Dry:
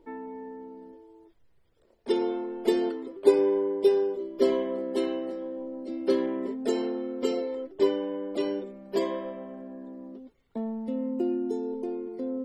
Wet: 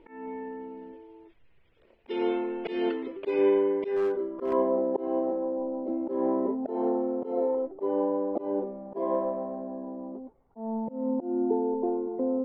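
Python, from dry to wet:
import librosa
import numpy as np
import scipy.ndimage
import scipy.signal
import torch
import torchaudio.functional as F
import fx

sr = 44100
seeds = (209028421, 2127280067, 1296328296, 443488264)

y = fx.auto_swell(x, sr, attack_ms=212.0)
y = fx.filter_sweep_lowpass(y, sr, from_hz=2600.0, to_hz=850.0, start_s=3.69, end_s=4.72, q=3.3)
y = fx.clip_hard(y, sr, threshold_db=-25.0, at=(3.96, 4.53))
y = F.gain(torch.from_numpy(y), 2.5).numpy()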